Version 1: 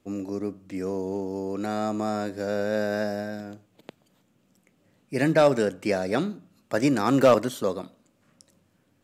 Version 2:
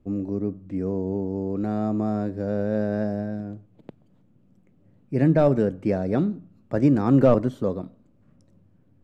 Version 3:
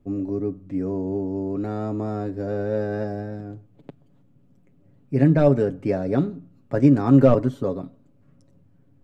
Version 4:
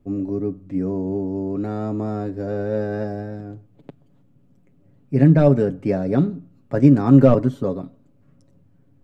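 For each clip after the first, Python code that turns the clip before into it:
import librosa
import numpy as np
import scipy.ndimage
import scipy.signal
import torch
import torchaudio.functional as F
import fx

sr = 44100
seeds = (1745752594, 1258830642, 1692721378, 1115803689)

y1 = fx.tilt_eq(x, sr, slope=-4.5)
y1 = y1 * 10.0 ** (-4.5 / 20.0)
y2 = y1 + 0.53 * np.pad(y1, (int(7.2 * sr / 1000.0), 0))[:len(y1)]
y3 = fx.dynamic_eq(y2, sr, hz=180.0, q=1.7, threshold_db=-32.0, ratio=4.0, max_db=5)
y3 = y3 * 10.0 ** (1.0 / 20.0)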